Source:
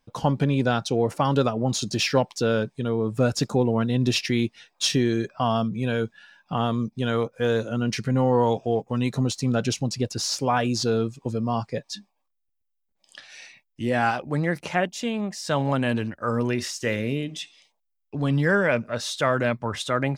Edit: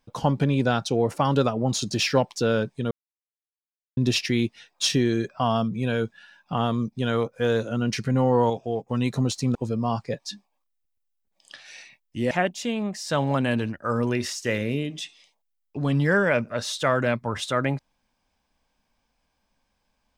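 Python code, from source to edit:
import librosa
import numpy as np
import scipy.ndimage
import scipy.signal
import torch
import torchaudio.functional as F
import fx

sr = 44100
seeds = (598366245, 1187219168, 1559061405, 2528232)

y = fx.edit(x, sr, fx.silence(start_s=2.91, length_s=1.06),
    fx.clip_gain(start_s=8.5, length_s=0.39, db=-4.0),
    fx.cut(start_s=9.55, length_s=1.64),
    fx.cut(start_s=13.95, length_s=0.74), tone=tone)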